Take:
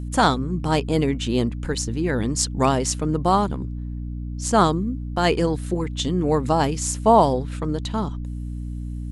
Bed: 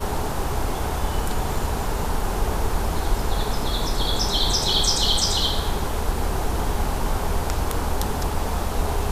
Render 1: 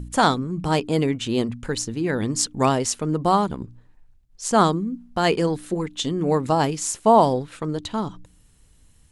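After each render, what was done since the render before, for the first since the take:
hum removal 60 Hz, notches 5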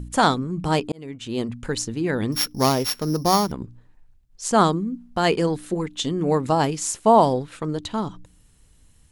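0:00.92–0:01.63: fade in
0:02.32–0:03.52: samples sorted by size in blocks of 8 samples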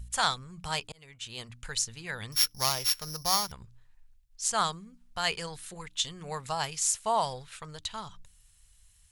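guitar amp tone stack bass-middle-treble 10-0-10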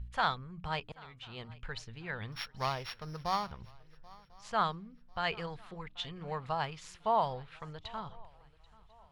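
high-frequency loss of the air 360 metres
feedback echo with a long and a short gap by turns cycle 1,046 ms, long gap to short 3 to 1, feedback 31%, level −23 dB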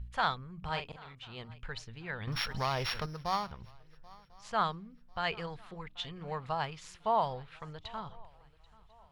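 0:00.58–0:01.15: double-tracking delay 43 ms −7 dB
0:02.27–0:03.06: envelope flattener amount 70%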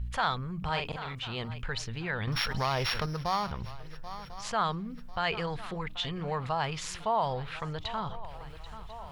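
envelope flattener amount 50%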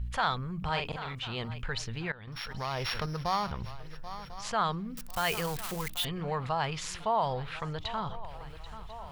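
0:02.12–0:03.26: fade in, from −18 dB
0:04.96–0:06.05: spike at every zero crossing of −28 dBFS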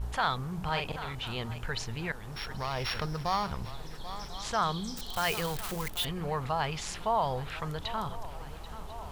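mix in bed −23 dB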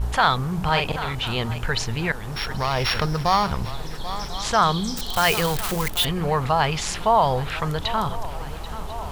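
level +10.5 dB

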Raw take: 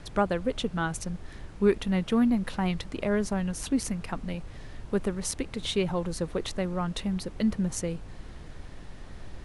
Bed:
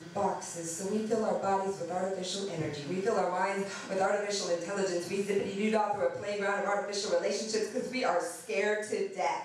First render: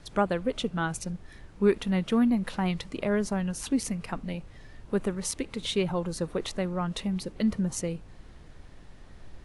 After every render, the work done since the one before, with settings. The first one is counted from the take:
noise reduction from a noise print 6 dB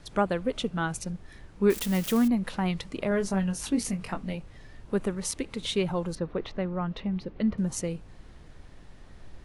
0:01.70–0:02.28: spike at every zero crossing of −24.5 dBFS
0:03.09–0:04.36: double-tracking delay 21 ms −6 dB
0:06.15–0:07.58: high-frequency loss of the air 260 metres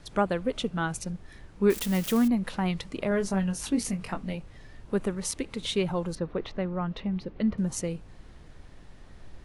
no processing that can be heard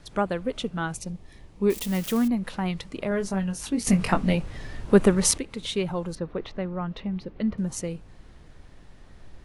0:00.95–0:01.88: parametric band 1,500 Hz −11 dB 0.4 octaves
0:03.87–0:05.38: clip gain +11 dB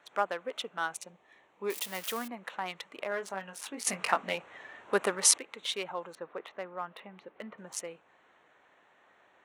adaptive Wiener filter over 9 samples
high-pass filter 740 Hz 12 dB per octave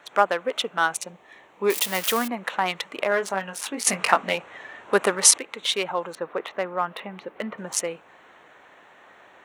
speech leveller within 3 dB 2 s
boost into a limiter +9.5 dB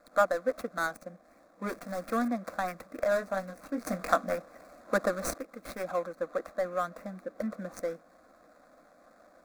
running median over 25 samples
phaser with its sweep stopped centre 600 Hz, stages 8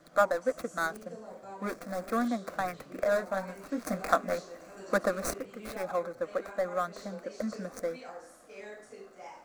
mix in bed −16 dB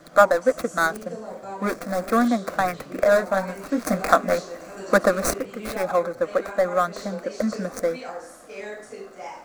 level +10 dB
brickwall limiter −1 dBFS, peak gain reduction 2 dB

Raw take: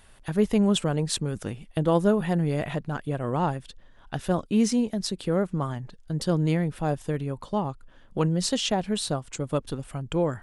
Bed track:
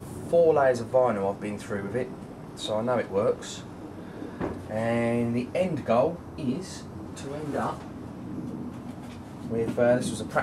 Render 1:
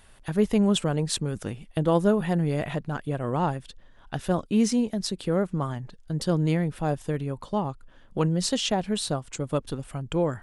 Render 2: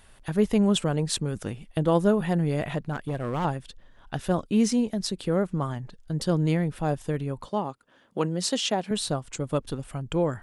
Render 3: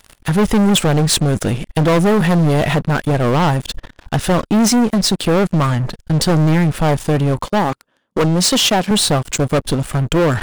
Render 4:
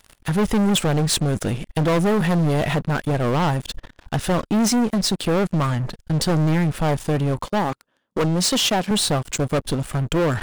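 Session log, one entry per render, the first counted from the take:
no processing that can be heard
0:02.93–0:03.45: hard clipping −23.5 dBFS; 0:07.49–0:08.91: high-pass filter 210 Hz
leveller curve on the samples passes 5; reversed playback; upward compression, threshold −18 dBFS; reversed playback
level −5.5 dB

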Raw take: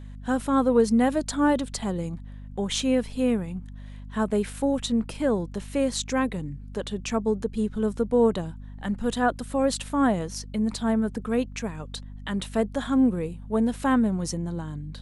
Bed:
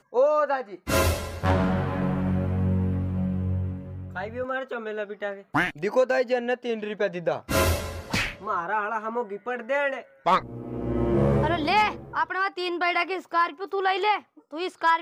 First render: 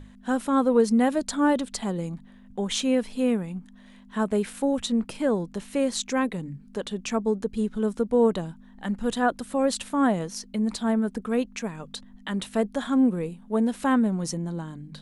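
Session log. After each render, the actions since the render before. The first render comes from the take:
mains-hum notches 50/100/150 Hz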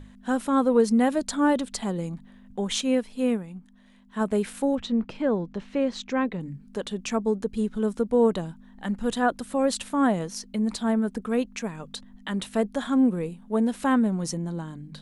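0:02.81–0:04.21: expander for the loud parts, over −32 dBFS
0:04.75–0:06.41: high-frequency loss of the air 170 metres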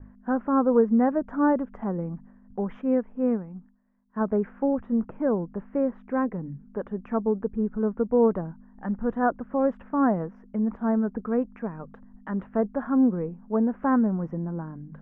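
inverse Chebyshev low-pass filter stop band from 3,900 Hz, stop band 50 dB
downward expander −46 dBFS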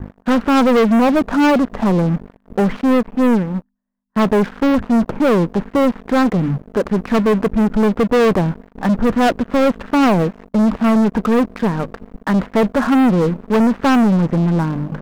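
leveller curve on the samples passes 5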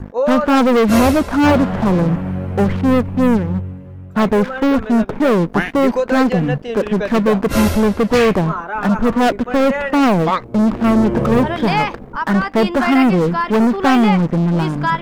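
mix in bed +3 dB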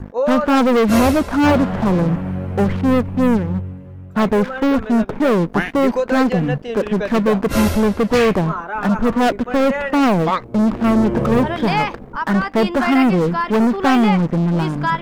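level −1.5 dB

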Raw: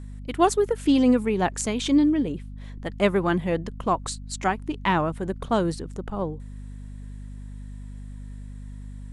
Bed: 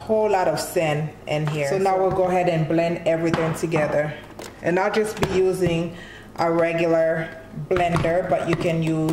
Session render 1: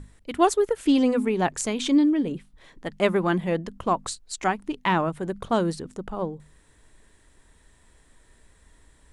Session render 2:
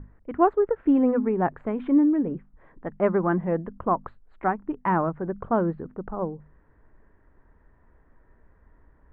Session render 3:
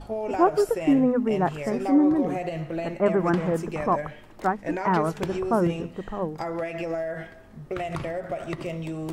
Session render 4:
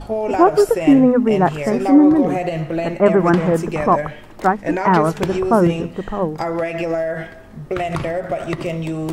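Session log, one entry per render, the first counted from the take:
mains-hum notches 50/100/150/200/250 Hz
inverse Chebyshev low-pass filter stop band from 5,200 Hz, stop band 60 dB
mix in bed −10.5 dB
level +8.5 dB; brickwall limiter −1 dBFS, peak gain reduction 2 dB

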